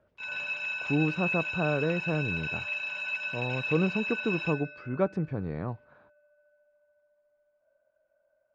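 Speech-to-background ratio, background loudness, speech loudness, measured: 1.0 dB, −32.0 LKFS, −31.0 LKFS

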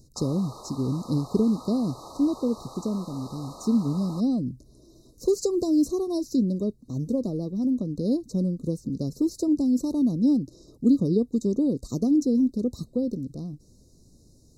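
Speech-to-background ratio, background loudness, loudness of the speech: 18.0 dB, −44.0 LKFS, −26.0 LKFS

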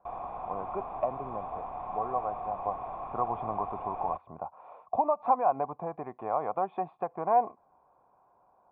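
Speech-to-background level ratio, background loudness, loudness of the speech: 6.5 dB, −39.0 LKFS, −32.5 LKFS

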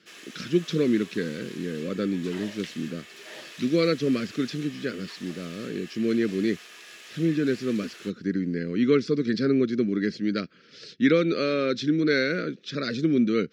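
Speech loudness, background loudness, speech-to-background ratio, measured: −26.5 LKFS, −43.5 LKFS, 17.0 dB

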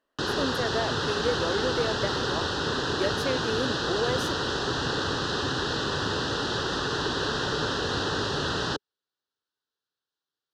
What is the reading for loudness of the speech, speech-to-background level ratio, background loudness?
−32.0 LKFS, −4.0 dB, −28.0 LKFS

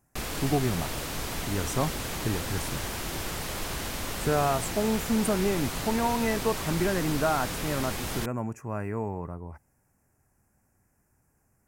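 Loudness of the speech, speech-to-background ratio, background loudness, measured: −30.0 LKFS, 3.0 dB, −33.0 LKFS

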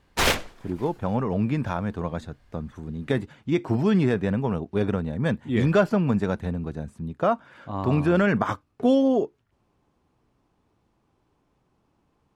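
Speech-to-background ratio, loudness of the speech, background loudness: −1.0 dB, −25.0 LKFS, −24.0 LKFS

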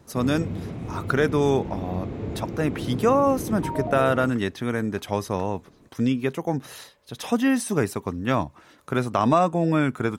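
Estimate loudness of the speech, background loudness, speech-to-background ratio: −24.5 LKFS, −32.5 LKFS, 8.0 dB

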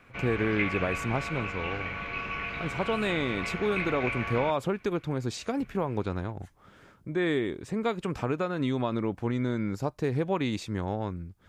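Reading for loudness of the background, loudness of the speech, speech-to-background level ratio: −33.5 LKFS, −31.0 LKFS, 2.5 dB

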